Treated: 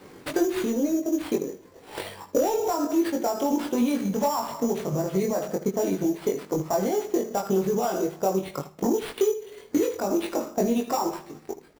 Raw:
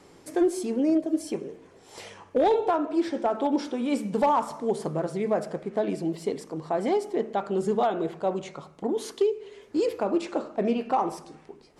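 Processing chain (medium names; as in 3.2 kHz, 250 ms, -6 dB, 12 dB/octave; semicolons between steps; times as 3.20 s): coarse spectral quantiser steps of 15 dB; peak limiter -25 dBFS, peak gain reduction 11 dB; transient shaper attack +7 dB, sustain -6 dB; sample-rate reducer 6.4 kHz, jitter 0%; on a send: early reflections 21 ms -3 dB, 78 ms -13.5 dB; on the sum: trim +4 dB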